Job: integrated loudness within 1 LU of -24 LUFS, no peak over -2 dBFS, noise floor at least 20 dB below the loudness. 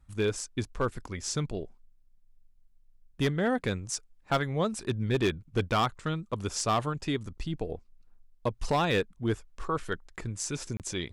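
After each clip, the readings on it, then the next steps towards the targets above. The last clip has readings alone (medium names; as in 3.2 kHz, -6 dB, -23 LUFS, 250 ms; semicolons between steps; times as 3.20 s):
clipped samples 0.7%; clipping level -20.0 dBFS; dropouts 1; longest dropout 28 ms; loudness -31.5 LUFS; peak level -20.0 dBFS; loudness target -24.0 LUFS
-> clip repair -20 dBFS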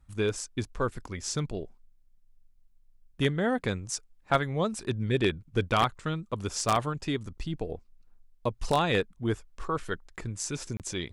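clipped samples 0.0%; dropouts 1; longest dropout 28 ms
-> interpolate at 10.77 s, 28 ms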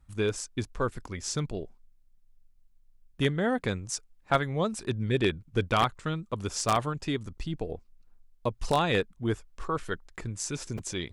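dropouts 0; loudness -31.0 LUFS; peak level -11.0 dBFS; loudness target -24.0 LUFS
-> trim +7 dB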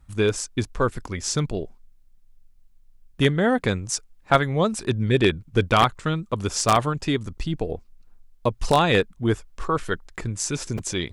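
loudness -24.0 LUFS; peak level -4.0 dBFS; noise floor -54 dBFS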